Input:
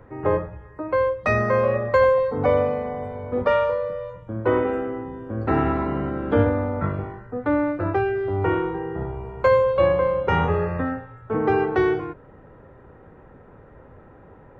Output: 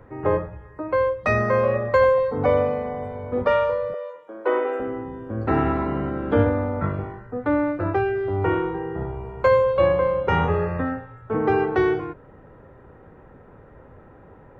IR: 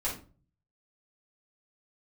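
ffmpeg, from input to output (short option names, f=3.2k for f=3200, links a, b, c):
-filter_complex "[0:a]asettb=1/sr,asplit=3[a][b][c];[a]atrim=end=3.944[d];[b]atrim=start=3.94:end=4.8,asetpts=PTS-STARTPTS,afade=t=in:d=0.004:c=qsin,afade=t=out:st=0.856:d=0.004:c=qsin,highpass=f=370:w=0.5412,highpass=f=370:w=1.3066[e];[c]atrim=start=4.796[f];[d][e]acrossfade=d=0.004:c1=hsin:c2=qsin[g];[g][f]acrossfade=d=0.004:c1=qsin:c2=hsin"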